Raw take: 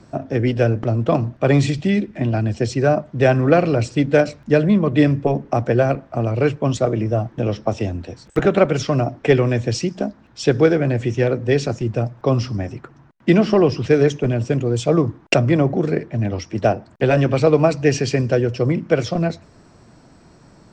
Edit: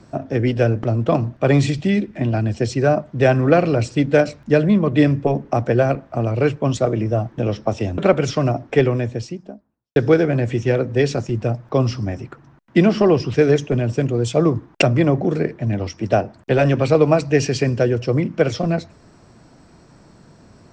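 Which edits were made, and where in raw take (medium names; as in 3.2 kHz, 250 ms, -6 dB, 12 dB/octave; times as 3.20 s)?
7.98–8.50 s: delete
9.06–10.48 s: studio fade out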